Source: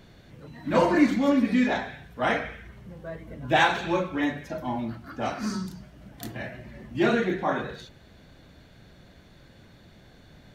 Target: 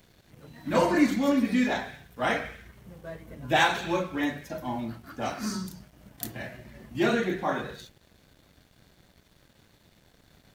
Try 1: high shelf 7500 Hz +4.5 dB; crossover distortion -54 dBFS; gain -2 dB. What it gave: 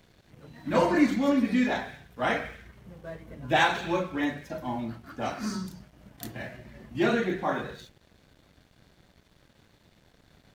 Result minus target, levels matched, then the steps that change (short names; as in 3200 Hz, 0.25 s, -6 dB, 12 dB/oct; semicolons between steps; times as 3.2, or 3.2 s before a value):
8000 Hz band -4.0 dB
change: high shelf 7500 Hz +14 dB